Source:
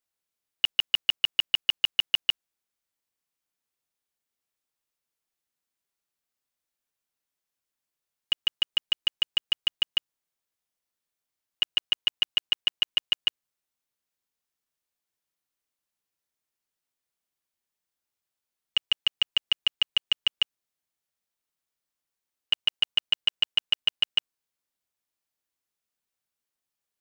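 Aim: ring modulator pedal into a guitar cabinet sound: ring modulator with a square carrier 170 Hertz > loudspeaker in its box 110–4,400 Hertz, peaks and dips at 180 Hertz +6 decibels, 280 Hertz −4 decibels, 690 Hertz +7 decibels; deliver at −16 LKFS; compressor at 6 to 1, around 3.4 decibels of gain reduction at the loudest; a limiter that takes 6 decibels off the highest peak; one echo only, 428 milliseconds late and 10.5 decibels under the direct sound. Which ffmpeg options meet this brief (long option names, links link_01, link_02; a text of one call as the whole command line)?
ffmpeg -i in.wav -af "acompressor=threshold=-22dB:ratio=6,alimiter=limit=-19.5dB:level=0:latency=1,aecho=1:1:428:0.299,aeval=exprs='val(0)*sgn(sin(2*PI*170*n/s))':channel_layout=same,highpass=110,equalizer=frequency=180:width_type=q:width=4:gain=6,equalizer=frequency=280:width_type=q:width=4:gain=-4,equalizer=frequency=690:width_type=q:width=4:gain=7,lowpass=frequency=4400:width=0.5412,lowpass=frequency=4400:width=1.3066,volume=18dB" out.wav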